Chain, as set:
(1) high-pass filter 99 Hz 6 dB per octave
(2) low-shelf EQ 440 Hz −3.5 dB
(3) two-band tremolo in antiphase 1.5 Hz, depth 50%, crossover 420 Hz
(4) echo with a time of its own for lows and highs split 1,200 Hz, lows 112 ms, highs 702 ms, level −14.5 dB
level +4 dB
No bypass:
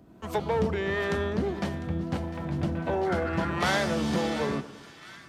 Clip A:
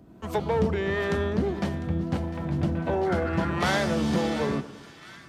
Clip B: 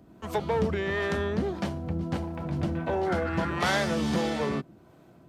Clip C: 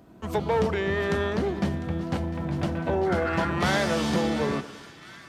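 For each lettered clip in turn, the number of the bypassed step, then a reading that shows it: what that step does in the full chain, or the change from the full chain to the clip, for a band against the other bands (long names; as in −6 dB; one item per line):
2, 125 Hz band +2.5 dB
4, echo-to-direct ratio −13.0 dB to none audible
3, change in integrated loudness +2.5 LU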